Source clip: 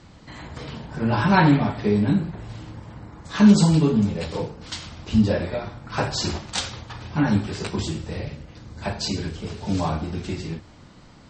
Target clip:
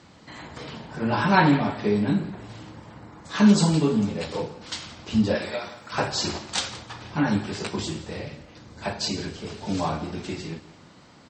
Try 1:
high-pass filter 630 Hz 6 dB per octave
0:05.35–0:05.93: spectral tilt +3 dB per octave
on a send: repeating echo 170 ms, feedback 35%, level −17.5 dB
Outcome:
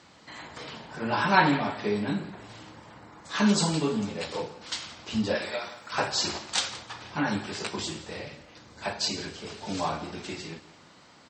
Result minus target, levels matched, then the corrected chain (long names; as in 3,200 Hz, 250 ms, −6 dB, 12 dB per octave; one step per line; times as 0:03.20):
250 Hz band −2.5 dB
high-pass filter 210 Hz 6 dB per octave
0:05.35–0:05.93: spectral tilt +3 dB per octave
on a send: repeating echo 170 ms, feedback 35%, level −17.5 dB